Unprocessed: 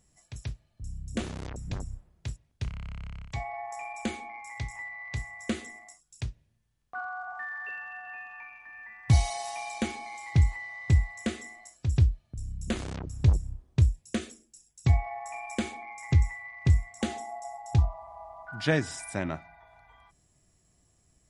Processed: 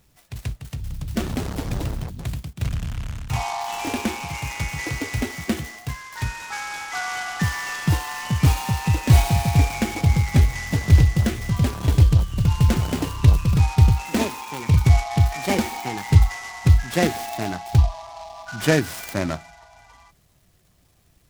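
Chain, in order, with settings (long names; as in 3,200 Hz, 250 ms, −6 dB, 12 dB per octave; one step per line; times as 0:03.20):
spectral magnitudes quantised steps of 15 dB
delay with pitch and tempo change per echo 327 ms, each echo +2 semitones, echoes 3
short delay modulated by noise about 3,700 Hz, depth 0.043 ms
level +7.5 dB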